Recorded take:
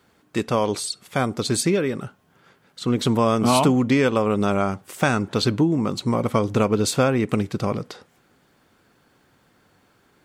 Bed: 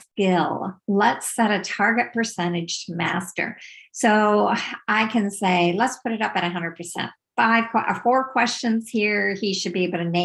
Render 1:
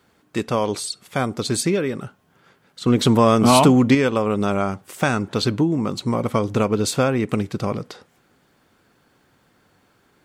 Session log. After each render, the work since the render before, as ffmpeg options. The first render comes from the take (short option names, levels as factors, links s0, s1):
-filter_complex "[0:a]asettb=1/sr,asplit=3[s0][s1][s2];[s0]atrim=end=2.864[s3];[s1]atrim=start=2.86:end=3.95,asetpts=PTS-STARTPTS,afade=t=in:d=0.004:c=qsin,afade=t=out:st=1.086:d=0.004:c=qsin,acontrast=20[s4];[s2]atrim=start=3.946[s5];[s3][s4]acrossfade=d=0.004:c1=hsin:c2=qsin[s6];[s6][s5]acrossfade=d=0.004:c1=qsin:c2=hsin"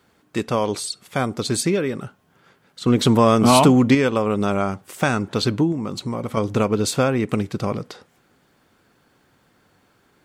-filter_complex "[0:a]asettb=1/sr,asplit=3[s0][s1][s2];[s0]atrim=end=5.724[s3];[s1]atrim=start=5.72:end=6.37,asetpts=PTS-STARTPTS,afade=t=in:d=0.004:c=qsin,afade=t=out:st=0.646:d=0.004:c=qsin,acompressor=threshold=0.0562:ratio=2:attack=3.2:release=140:knee=1:detection=peak[s4];[s2]atrim=start=6.366[s5];[s3][s4]acrossfade=d=0.004:c1=hsin:c2=qsin[s6];[s6][s5]acrossfade=d=0.004:c1=qsin:c2=hsin"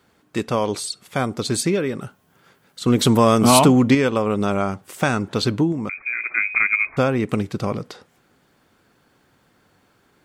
-filter_complex "[0:a]asettb=1/sr,asplit=3[s0][s1][s2];[s0]atrim=end=2.024[s3];[s1]atrim=start=2.02:end=3.59,asetpts=PTS-STARTPTS,afade=t=in:d=0.004:c=qsin,afade=t=out:st=1.566:d=0.004:c=qsin,highshelf=f=7900:g=9[s4];[s2]atrim=start=3.586[s5];[s3][s4]acrossfade=d=0.004:c1=hsin:c2=qsin[s6];[s6][s5]acrossfade=d=0.004:c1=qsin:c2=hsin,asettb=1/sr,asplit=3[s7][s8][s9];[s7]atrim=end=5.894[s10];[s8]atrim=start=5.89:end=6.97,asetpts=PTS-STARTPTS,afade=t=in:d=0.004:c=qsin,afade=t=out:st=1.076:d=0.004:c=qsin,lowpass=f=2200:t=q:w=0.5098,lowpass=f=2200:t=q:w=0.6013,lowpass=f=2200:t=q:w=0.9,lowpass=f=2200:t=q:w=2.563,afreqshift=-2600[s11];[s9]atrim=start=6.966[s12];[s10][s11]acrossfade=d=0.004:c1=hsin:c2=qsin[s13];[s13][s12]acrossfade=d=0.004:c1=qsin:c2=hsin"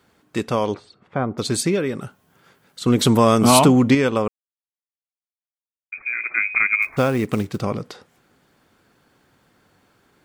-filter_complex "[0:a]asettb=1/sr,asplit=3[s0][s1][s2];[s0]atrim=end=0.744[s3];[s1]atrim=start=0.74:end=1.38,asetpts=PTS-STARTPTS,afade=t=in:d=0.004:c=qsin,afade=t=out:st=0.636:d=0.004:c=qsin,lowpass=1400[s4];[s2]atrim=start=1.376[s5];[s3][s4]acrossfade=d=0.004:c1=hsin:c2=qsin[s6];[s6][s5]acrossfade=d=0.004:c1=qsin:c2=hsin,asettb=1/sr,asplit=3[s7][s8][s9];[s7]atrim=end=6.824[s10];[s8]atrim=start=6.82:end=7.62,asetpts=PTS-STARTPTS,afade=t=in:d=0.004:c=qsin,afade=t=out:st=0.796:d=0.004:c=qsin,acrusher=bits=6:mode=log:mix=0:aa=0.000001[s11];[s9]atrim=start=7.616[s12];[s10][s11]acrossfade=d=0.004:c1=hsin:c2=qsin[s13];[s13][s12]acrossfade=d=0.004:c1=qsin:c2=hsin,asplit=3[s14][s15][s16];[s14]atrim=end=4.28,asetpts=PTS-STARTPTS,afade=t=out:st=4.276:d=0.004:c=hsin[s17];[s15]atrim=start=4.28:end=5.92,asetpts=PTS-STARTPTS,volume=0[s18];[s16]atrim=start=5.92,asetpts=PTS-STARTPTS,afade=t=in:d=0.004:c=hsin[s19];[s17][s18][s19]concat=n=3:v=0:a=1"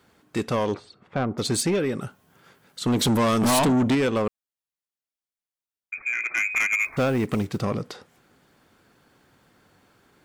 -af "asoftclip=type=tanh:threshold=0.141"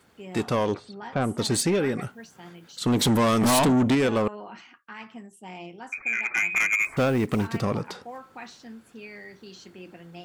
-filter_complex "[1:a]volume=0.0841[s0];[0:a][s0]amix=inputs=2:normalize=0"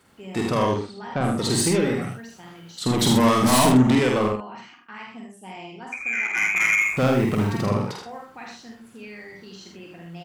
-filter_complex "[0:a]asplit=2[s0][s1];[s1]adelay=47,volume=0.562[s2];[s0][s2]amix=inputs=2:normalize=0,aecho=1:1:48|78:0.501|0.562"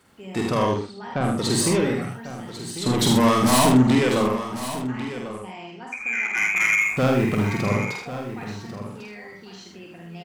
-af "aecho=1:1:1096:0.237"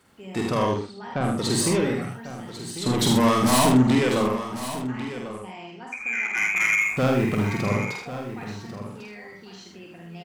-af "volume=0.841"